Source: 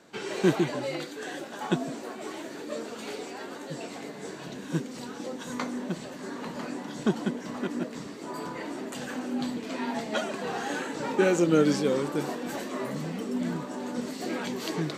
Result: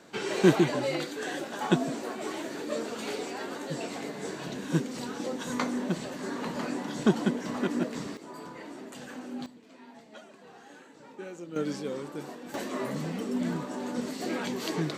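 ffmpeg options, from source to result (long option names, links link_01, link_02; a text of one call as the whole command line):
ffmpeg -i in.wav -af "asetnsamples=nb_out_samples=441:pad=0,asendcmd='8.17 volume volume -7dB;9.46 volume volume -19dB;11.56 volume volume -9dB;12.54 volume volume 0dB',volume=2.5dB" out.wav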